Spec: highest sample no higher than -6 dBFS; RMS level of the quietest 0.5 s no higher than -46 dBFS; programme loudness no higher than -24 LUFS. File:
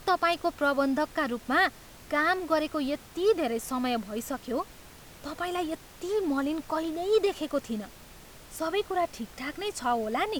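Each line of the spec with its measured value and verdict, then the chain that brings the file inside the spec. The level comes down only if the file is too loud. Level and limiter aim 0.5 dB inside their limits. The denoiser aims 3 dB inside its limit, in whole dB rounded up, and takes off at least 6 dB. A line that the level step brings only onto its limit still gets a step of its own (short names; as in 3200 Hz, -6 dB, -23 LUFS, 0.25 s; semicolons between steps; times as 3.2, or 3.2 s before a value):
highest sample -13.5 dBFS: OK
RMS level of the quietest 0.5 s -49 dBFS: OK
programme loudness -29.0 LUFS: OK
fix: none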